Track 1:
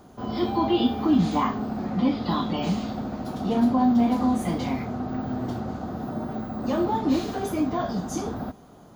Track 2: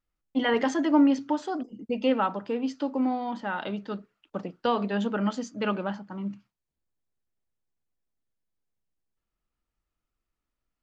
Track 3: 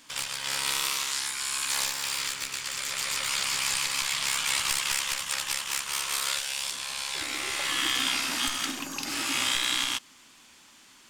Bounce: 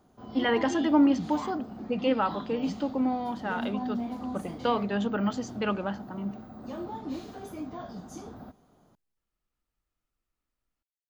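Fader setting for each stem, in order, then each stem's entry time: -13.0 dB, -1.0 dB, mute; 0.00 s, 0.00 s, mute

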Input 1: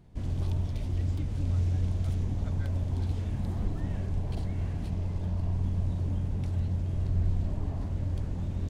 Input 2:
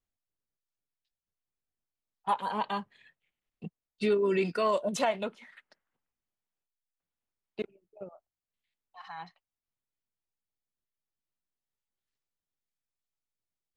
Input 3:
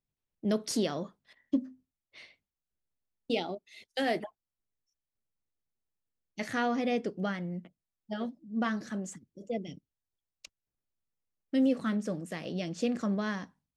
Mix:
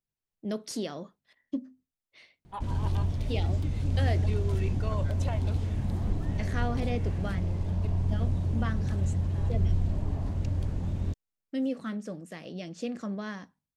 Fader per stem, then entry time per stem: +1.5 dB, -11.0 dB, -4.0 dB; 2.45 s, 0.25 s, 0.00 s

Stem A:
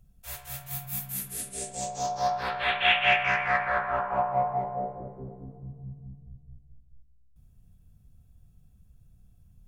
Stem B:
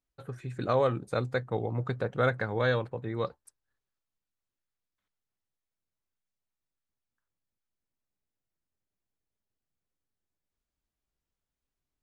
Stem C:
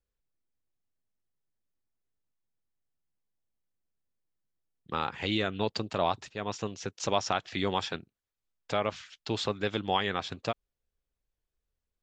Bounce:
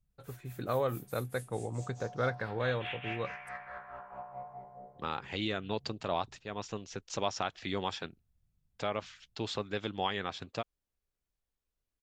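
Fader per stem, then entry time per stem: -18.5 dB, -5.5 dB, -5.0 dB; 0.00 s, 0.00 s, 0.10 s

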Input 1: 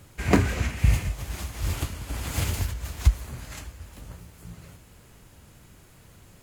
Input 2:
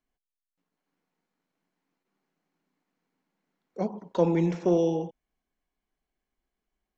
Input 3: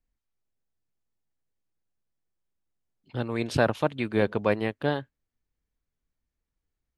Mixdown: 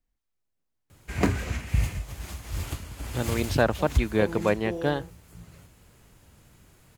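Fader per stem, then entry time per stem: -4.0 dB, -11.0 dB, +0.5 dB; 0.90 s, 0.00 s, 0.00 s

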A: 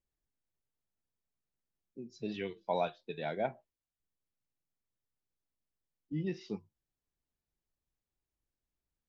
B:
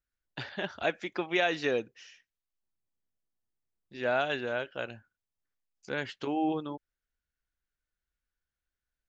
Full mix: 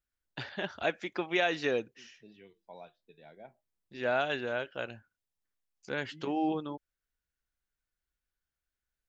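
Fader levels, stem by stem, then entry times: -17.0 dB, -1.0 dB; 0.00 s, 0.00 s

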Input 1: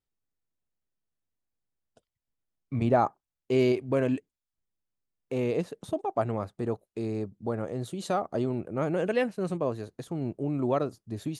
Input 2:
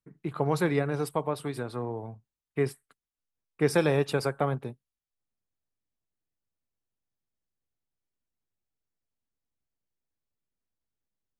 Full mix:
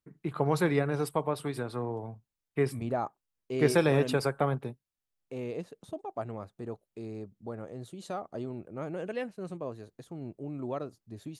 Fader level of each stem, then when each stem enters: -8.5 dB, -0.5 dB; 0.00 s, 0.00 s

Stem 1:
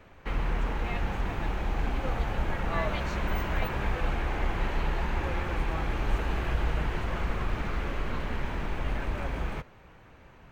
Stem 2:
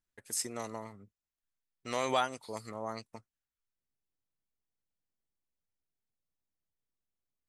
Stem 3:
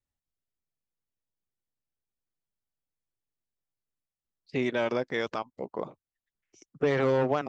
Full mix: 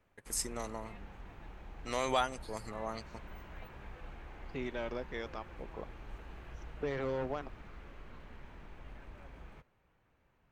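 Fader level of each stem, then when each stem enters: -19.5 dB, -1.0 dB, -11.0 dB; 0.00 s, 0.00 s, 0.00 s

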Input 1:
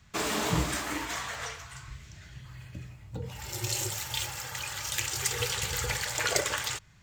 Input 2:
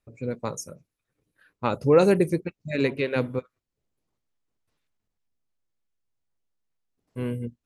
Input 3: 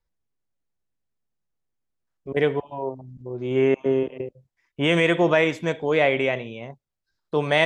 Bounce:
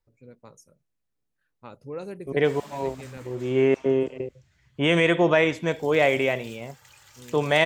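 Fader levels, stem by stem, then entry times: -17.0 dB, -18.0 dB, -0.5 dB; 2.30 s, 0.00 s, 0.00 s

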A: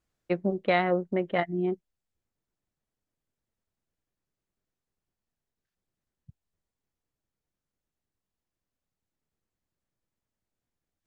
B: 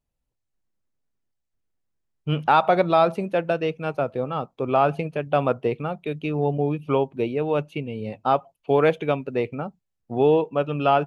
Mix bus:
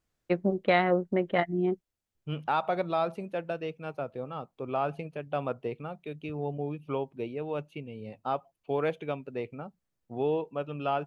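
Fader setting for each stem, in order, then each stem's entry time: +0.5 dB, -10.5 dB; 0.00 s, 0.00 s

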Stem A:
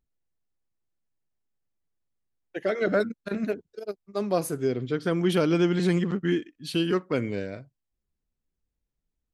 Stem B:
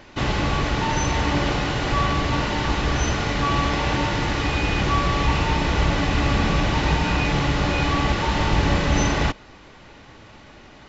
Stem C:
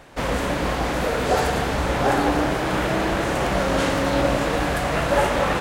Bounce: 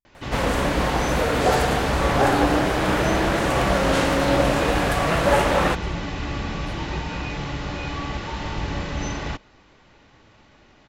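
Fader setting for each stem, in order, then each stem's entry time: -15.0 dB, -8.0 dB, +1.0 dB; 0.00 s, 0.05 s, 0.15 s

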